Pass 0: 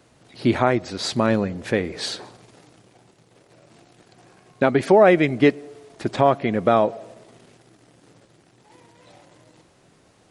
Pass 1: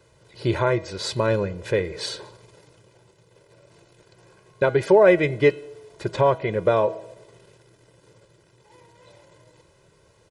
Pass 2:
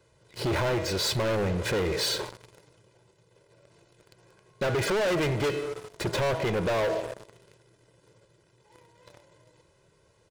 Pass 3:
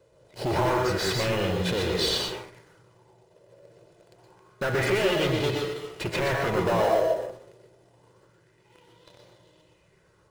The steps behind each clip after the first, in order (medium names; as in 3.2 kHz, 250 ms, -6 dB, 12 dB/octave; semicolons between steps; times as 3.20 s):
bass shelf 380 Hz +3 dB; comb 2 ms, depth 84%; de-hum 161.2 Hz, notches 27; trim -4.5 dB
waveshaping leveller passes 3; peak limiter -13.5 dBFS, peak gain reduction 8.5 dB; saturation -24 dBFS, distortion -10 dB
in parallel at -7 dB: sample-and-hold 19×; on the sum: reverberation RT60 0.35 s, pre-delay 112 ms, DRR 1 dB; sweeping bell 0.27 Hz 540–3700 Hz +10 dB; trim -4.5 dB